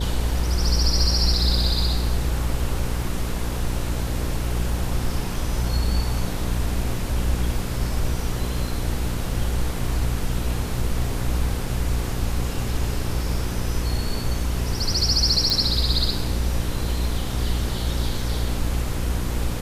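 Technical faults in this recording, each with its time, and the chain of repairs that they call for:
buzz 60 Hz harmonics 9 -27 dBFS
15.5 pop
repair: de-click; de-hum 60 Hz, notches 9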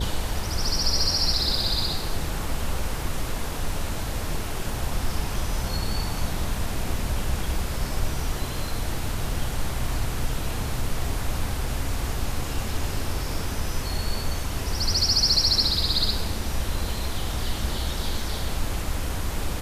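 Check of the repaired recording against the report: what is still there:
none

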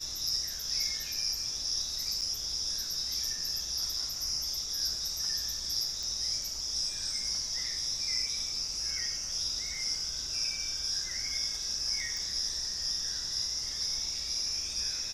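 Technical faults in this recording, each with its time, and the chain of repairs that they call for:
2.21–2.22 gap 7.2 ms
6.03 pop
12.17 pop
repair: de-click; interpolate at 2.21, 7.2 ms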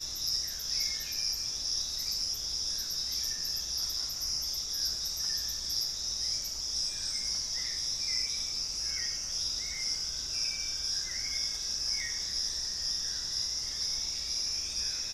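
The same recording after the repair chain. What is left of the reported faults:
none

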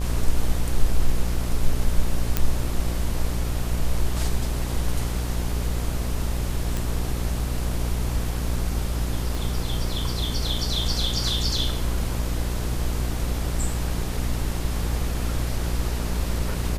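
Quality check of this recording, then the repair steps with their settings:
buzz 60 Hz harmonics 21 -27 dBFS
2.37 pop -5 dBFS
6.77 pop
9.35 pop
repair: de-click; de-hum 60 Hz, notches 21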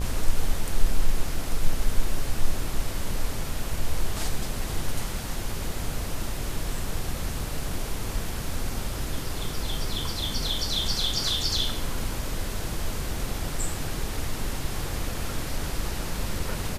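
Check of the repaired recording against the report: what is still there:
9.35 pop

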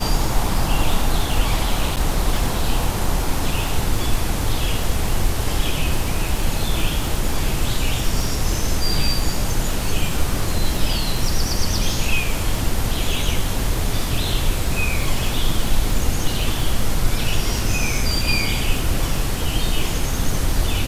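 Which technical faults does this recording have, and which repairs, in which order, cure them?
crackle 55/s -24 dBFS
1.96–1.97 gap 8.6 ms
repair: de-click; interpolate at 1.96, 8.6 ms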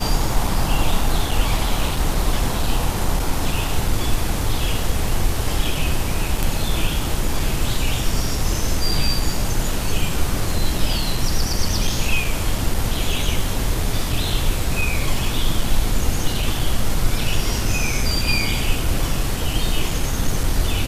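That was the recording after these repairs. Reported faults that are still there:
none

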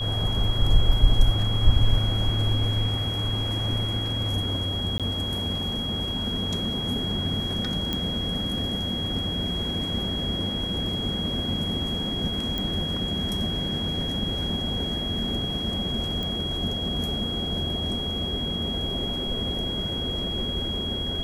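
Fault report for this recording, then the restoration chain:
tone 3300 Hz -29 dBFS
4.98–5 gap 17 ms
7.93 pop -13 dBFS
12.58 pop -15 dBFS
16.23 pop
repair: de-click; notch 3300 Hz, Q 30; interpolate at 4.98, 17 ms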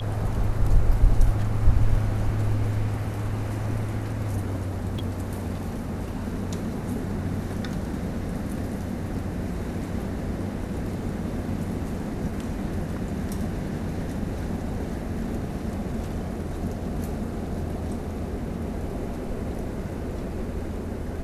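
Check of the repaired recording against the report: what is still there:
none

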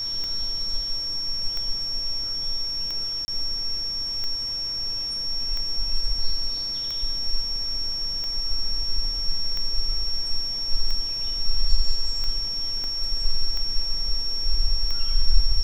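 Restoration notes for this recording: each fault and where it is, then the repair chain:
tick 45 rpm -18 dBFS
tone 5500 Hz -26 dBFS
3.25–3.28 gap 30 ms
12.84 pop -21 dBFS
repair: de-click; notch 5500 Hz, Q 30; interpolate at 3.25, 30 ms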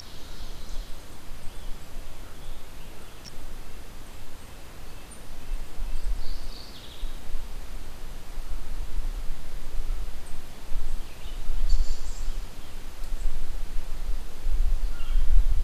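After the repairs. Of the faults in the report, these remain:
12.84 pop

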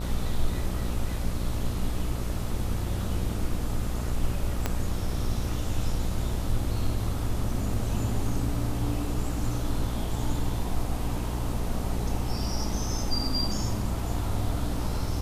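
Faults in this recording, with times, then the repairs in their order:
buzz 60 Hz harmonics 21 -32 dBFS
4.66 pop -11 dBFS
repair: de-click; de-hum 60 Hz, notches 21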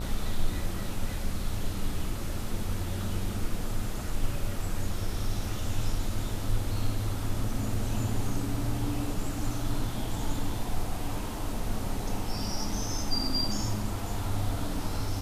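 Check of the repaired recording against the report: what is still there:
4.66 pop

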